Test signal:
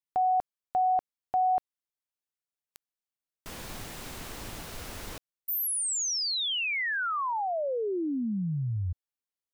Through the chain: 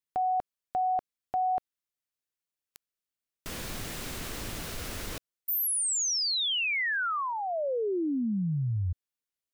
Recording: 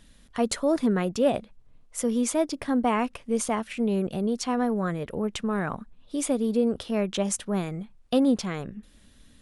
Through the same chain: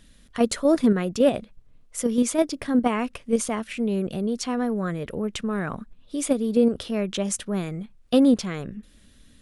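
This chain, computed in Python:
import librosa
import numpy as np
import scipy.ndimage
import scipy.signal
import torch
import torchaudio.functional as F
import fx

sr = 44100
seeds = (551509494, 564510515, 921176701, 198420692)

p1 = fx.peak_eq(x, sr, hz=860.0, db=-5.0, octaves=0.71)
p2 = fx.level_steps(p1, sr, step_db=23)
y = p1 + F.gain(torch.from_numpy(p2), 0.0).numpy()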